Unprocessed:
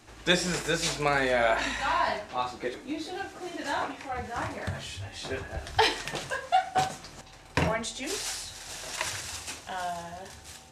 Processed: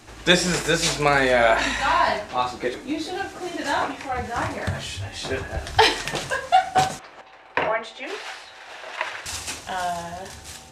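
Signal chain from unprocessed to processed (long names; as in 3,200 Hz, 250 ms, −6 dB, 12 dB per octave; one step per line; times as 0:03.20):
0:06.99–0:09.26: three-way crossover with the lows and the highs turned down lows −22 dB, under 380 Hz, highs −23 dB, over 3,100 Hz
level +7 dB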